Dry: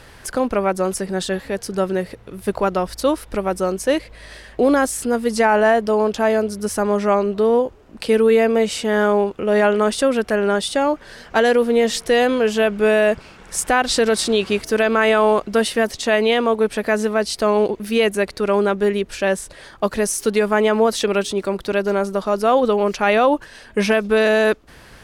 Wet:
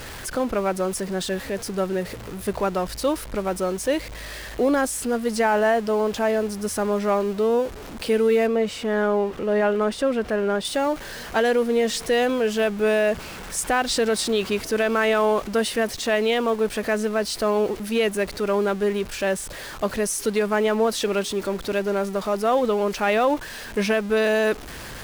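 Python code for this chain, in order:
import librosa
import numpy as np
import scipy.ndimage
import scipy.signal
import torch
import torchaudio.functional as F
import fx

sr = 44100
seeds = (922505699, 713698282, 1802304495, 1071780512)

y = x + 0.5 * 10.0 ** (-27.0 / 20.0) * np.sign(x)
y = fx.high_shelf(y, sr, hz=4100.0, db=-10.5, at=(8.47, 10.65))
y = y * librosa.db_to_amplitude(-5.5)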